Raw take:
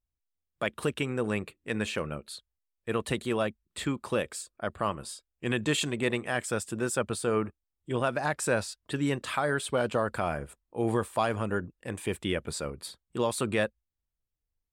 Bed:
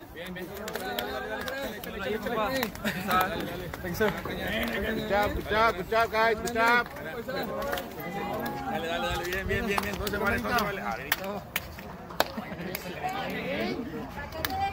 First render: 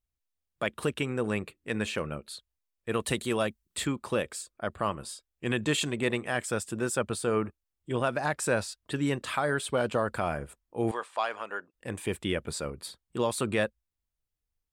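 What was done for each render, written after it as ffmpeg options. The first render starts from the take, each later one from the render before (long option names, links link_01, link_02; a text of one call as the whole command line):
ffmpeg -i in.wav -filter_complex "[0:a]asettb=1/sr,asplit=3[link_01][link_02][link_03];[link_01]atrim=end=2.944[link_04];[link_02]atrim=start=2.94:end=3.87,asetpts=PTS-STARTPTS,afade=type=in:duration=0.004:curve=qsin,afade=type=out:start_time=0.926:duration=0.004:curve=qsin,highshelf=frequency=4300:gain=8[link_05];[link_03]atrim=start=3.866[link_06];[link_04][link_05]acrossfade=duration=0.004:curve1=hsin:curve2=qsin[link_07];[link_07][link_06]acrossfade=duration=0.004:curve1=qsin:curve2=hsin,asettb=1/sr,asplit=3[link_08][link_09][link_10];[link_08]atrim=end=10.914[link_11];[link_09]atrim=start=10.91:end=11.74,asetpts=PTS-STARTPTS,afade=type=in:duration=0.004:curve=qsin,afade=type=out:start_time=0.826:duration=0.004:curve=qsin,highpass=720,lowpass=5600[link_12];[link_10]atrim=start=11.736[link_13];[link_11][link_12]acrossfade=duration=0.004:curve1=hsin:curve2=qsin[link_14];[link_14][link_13]acrossfade=duration=0.004:curve1=qsin:curve2=hsin" out.wav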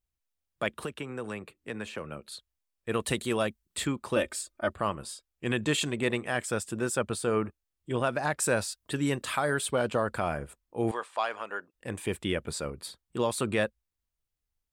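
ffmpeg -i in.wav -filter_complex "[0:a]asettb=1/sr,asplit=3[link_01][link_02][link_03];[link_01]atrim=end=0.734[link_04];[link_02]atrim=start=0.73:end=2.32,asetpts=PTS-STARTPTS,afade=type=in:duration=0.004:curve=qsin,afade=type=out:start_time=1.586:duration=0.004:curve=qsin,acrossover=split=150|660|1400[link_05][link_06][link_07][link_08];[link_05]acompressor=threshold=-52dB:ratio=3[link_09];[link_06]acompressor=threshold=-39dB:ratio=3[link_10];[link_07]acompressor=threshold=-43dB:ratio=3[link_11];[link_08]acompressor=threshold=-45dB:ratio=3[link_12];[link_09][link_10][link_11][link_12]amix=inputs=4:normalize=0[link_13];[link_03]atrim=start=2.316[link_14];[link_04][link_13]acrossfade=duration=0.004:curve1=hsin:curve2=qsin[link_15];[link_15][link_14]acrossfade=duration=0.004:curve1=qsin:curve2=hsin,asettb=1/sr,asplit=3[link_16][link_17][link_18];[link_16]atrim=end=4.164[link_19];[link_17]atrim=start=4.16:end=4.73,asetpts=PTS-STARTPTS,afade=type=in:duration=0.004:curve=qsin,afade=type=out:start_time=0.566:duration=0.004:curve=qsin,aecho=1:1:3.3:0.98,atrim=end_sample=25137[link_20];[link_18]atrim=start=4.726[link_21];[link_19][link_20]acrossfade=duration=0.004:curve1=hsin:curve2=qsin[link_22];[link_22][link_21]acrossfade=duration=0.004:curve1=qsin:curve2=hsin,asettb=1/sr,asplit=3[link_23][link_24][link_25];[link_23]atrim=end=8.404[link_26];[link_24]atrim=start=8.4:end=9.71,asetpts=PTS-STARTPTS,afade=type=in:duration=0.004:curve=qsin,afade=type=out:start_time=1.306:duration=0.004:curve=qsin,highshelf=frequency=7600:gain=8[link_27];[link_25]atrim=start=9.706[link_28];[link_26][link_27]acrossfade=duration=0.004:curve1=hsin:curve2=qsin[link_29];[link_29][link_28]acrossfade=duration=0.004:curve1=qsin:curve2=hsin" out.wav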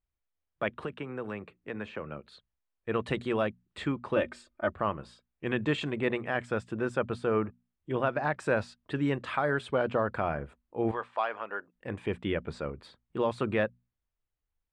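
ffmpeg -i in.wav -af "lowpass=2400,bandreject=frequency=60:width_type=h:width=6,bandreject=frequency=120:width_type=h:width=6,bandreject=frequency=180:width_type=h:width=6,bandreject=frequency=240:width_type=h:width=6" out.wav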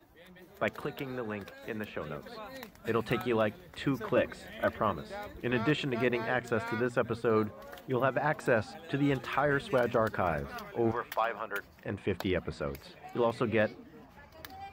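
ffmpeg -i in.wav -i bed.wav -filter_complex "[1:a]volume=-16dB[link_01];[0:a][link_01]amix=inputs=2:normalize=0" out.wav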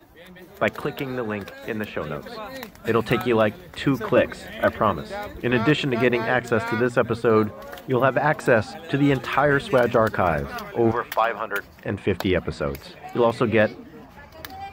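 ffmpeg -i in.wav -af "volume=9.5dB" out.wav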